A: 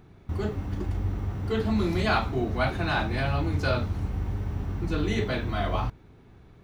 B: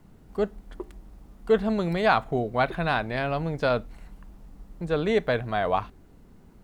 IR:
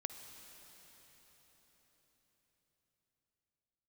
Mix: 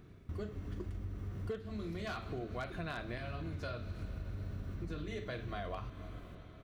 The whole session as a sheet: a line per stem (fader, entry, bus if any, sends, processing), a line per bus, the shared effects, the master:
-6.5 dB, 0.00 s, send -4.5 dB, auto duck -9 dB, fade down 0.20 s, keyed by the second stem
-3.0 dB, 0.6 ms, polarity flipped, no send, wavefolder -13 dBFS; tremolo saw up 0.63 Hz, depth 85%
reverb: on, RT60 5.0 s, pre-delay 47 ms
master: bell 840 Hz -14.5 dB 0.24 oct; compressor 12:1, threshold -37 dBFS, peak gain reduction 17 dB

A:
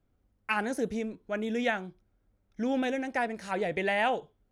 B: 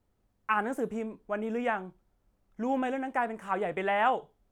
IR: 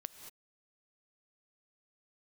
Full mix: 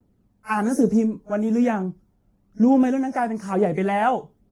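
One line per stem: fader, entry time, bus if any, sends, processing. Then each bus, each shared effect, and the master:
+2.5 dB, 0.00 s, no send, phase scrambler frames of 0.1 s; gate with hold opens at -60 dBFS; EQ curve 1200 Hz 0 dB, 3100 Hz -21 dB, 5300 Hz +9 dB; auto duck -7 dB, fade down 1.75 s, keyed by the second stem
0.0 dB, 5.6 ms, no send, bell 200 Hz +14.5 dB 2.5 oct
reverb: off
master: phaser 1.1 Hz, delay 1.5 ms, feedback 33%

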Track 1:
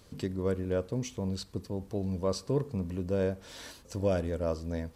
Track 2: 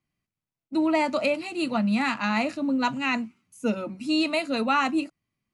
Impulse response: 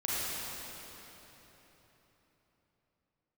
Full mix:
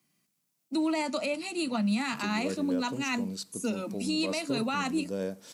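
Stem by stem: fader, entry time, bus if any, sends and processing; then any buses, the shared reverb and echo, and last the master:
-4.5 dB, 2.00 s, no send, dry
-5.5 dB, 0.00 s, no send, three-band squash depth 40%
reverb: off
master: HPF 170 Hz 24 dB/oct; tone controls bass +5 dB, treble +11 dB; limiter -20.5 dBFS, peak gain reduction 5.5 dB

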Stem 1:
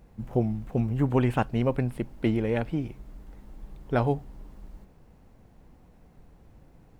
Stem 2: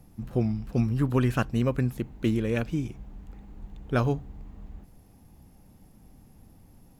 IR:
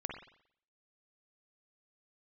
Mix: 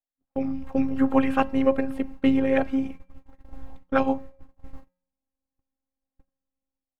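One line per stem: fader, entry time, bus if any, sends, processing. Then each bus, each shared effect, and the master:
+0.5 dB, 0.00 s, send -21 dB, notches 50/100/150/200/250 Hz; AGC gain up to 16 dB; robotiser 267 Hz
+2.5 dB, 0.00 s, no send, stepped high-pass 9.3 Hz 620–2600 Hz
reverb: on, RT60 0.65 s, pre-delay 44 ms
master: gate -29 dBFS, range -43 dB; high shelf 3500 Hz -10 dB; resonator 180 Hz, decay 0.66 s, harmonics odd, mix 50%

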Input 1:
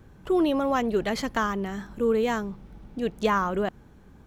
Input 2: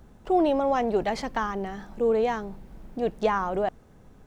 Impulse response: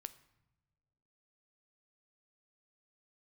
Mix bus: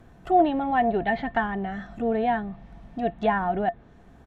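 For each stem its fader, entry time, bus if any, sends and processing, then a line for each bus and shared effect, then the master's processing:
-1.0 dB, 0.00 s, no send, treble ducked by the level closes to 940 Hz, closed at -24 dBFS
-1.0 dB, 1.4 ms, no send, steep low-pass 3900 Hz 72 dB/oct; low shelf 330 Hz -9 dB; small resonant body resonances 690/1800 Hz, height 16 dB, ringing for 95 ms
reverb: off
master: dry

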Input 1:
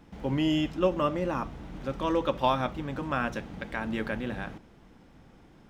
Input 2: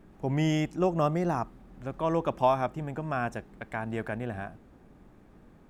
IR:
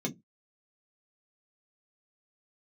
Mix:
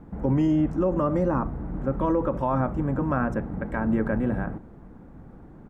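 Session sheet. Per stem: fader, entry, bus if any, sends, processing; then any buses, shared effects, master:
+3.0 dB, 0.00 s, no send, LPF 1600 Hz 24 dB/oct; low shelf 500 Hz +7.5 dB
-5.0 dB, 0.5 ms, no send, HPF 420 Hz 12 dB/oct; ending taper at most 110 dB/s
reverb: off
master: limiter -15 dBFS, peak gain reduction 9 dB

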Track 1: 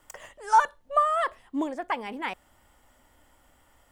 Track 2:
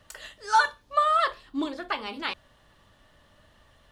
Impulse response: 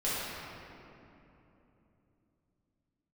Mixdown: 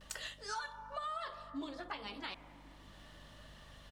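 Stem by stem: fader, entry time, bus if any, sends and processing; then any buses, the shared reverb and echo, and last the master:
-18.0 dB, 0.00 s, send -15.5 dB, hum 50 Hz, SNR 13 dB
+0.5 dB, 7.5 ms, no send, bell 4600 Hz +5 dB 1.9 oct; limiter -16.5 dBFS, peak gain reduction 7 dB; auto duck -12 dB, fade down 0.80 s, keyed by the first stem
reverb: on, RT60 3.1 s, pre-delay 5 ms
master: compressor 6:1, threshold -38 dBFS, peak gain reduction 10 dB

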